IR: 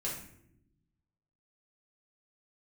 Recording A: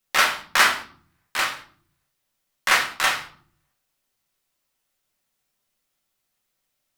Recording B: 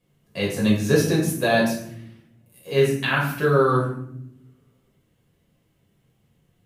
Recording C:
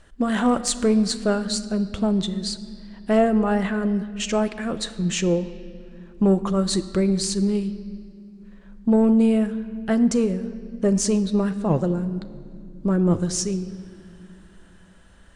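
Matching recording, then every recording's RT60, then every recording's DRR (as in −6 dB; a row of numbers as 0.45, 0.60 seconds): B; 0.50 s, non-exponential decay, non-exponential decay; 0.0, −5.5, 10.5 decibels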